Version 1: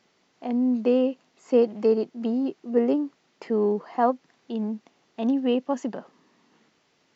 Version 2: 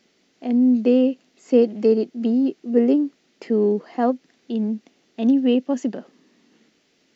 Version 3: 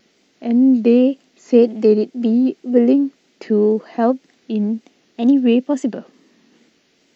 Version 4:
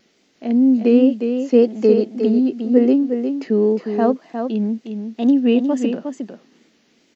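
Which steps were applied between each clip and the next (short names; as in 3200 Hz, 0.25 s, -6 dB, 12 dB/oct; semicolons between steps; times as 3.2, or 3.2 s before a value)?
graphic EQ 125/250/1000 Hz -7/+4/-11 dB; gain +4.5 dB
wow and flutter 80 cents; gain +4 dB
echo 0.358 s -7 dB; gain -1.5 dB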